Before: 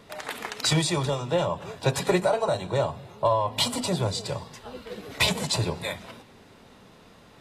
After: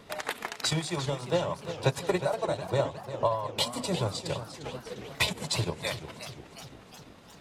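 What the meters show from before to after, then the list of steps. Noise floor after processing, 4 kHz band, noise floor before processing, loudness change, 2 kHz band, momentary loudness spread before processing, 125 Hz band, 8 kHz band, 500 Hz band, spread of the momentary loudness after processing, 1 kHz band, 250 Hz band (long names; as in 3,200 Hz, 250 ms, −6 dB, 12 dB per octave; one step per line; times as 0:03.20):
−52 dBFS, −4.5 dB, −53 dBFS, −4.5 dB, −3.5 dB, 16 LU, −4.0 dB, −5.0 dB, −4.0 dB, 14 LU, −4.5 dB, −5.0 dB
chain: speech leveller within 5 dB 0.5 s
transient designer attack +4 dB, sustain −7 dB
feedback echo with a swinging delay time 355 ms, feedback 62%, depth 203 cents, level −11.5 dB
level −5.5 dB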